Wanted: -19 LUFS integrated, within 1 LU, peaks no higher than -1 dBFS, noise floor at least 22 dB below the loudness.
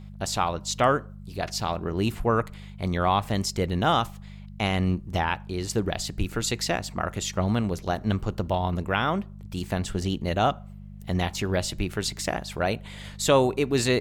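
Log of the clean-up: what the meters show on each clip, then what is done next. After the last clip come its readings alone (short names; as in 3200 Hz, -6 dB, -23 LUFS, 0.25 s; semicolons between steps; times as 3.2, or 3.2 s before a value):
hum 50 Hz; harmonics up to 200 Hz; hum level -39 dBFS; loudness -27.0 LUFS; peak -8.0 dBFS; loudness target -19.0 LUFS
-> de-hum 50 Hz, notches 4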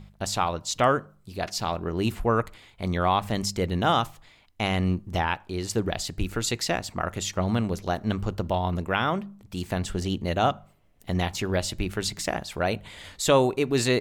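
hum none; loudness -27.0 LUFS; peak -7.5 dBFS; loudness target -19.0 LUFS
-> gain +8 dB; limiter -1 dBFS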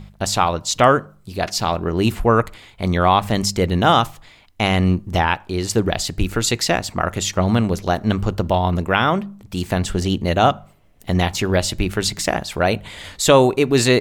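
loudness -19.0 LUFS; peak -1.0 dBFS; noise floor -50 dBFS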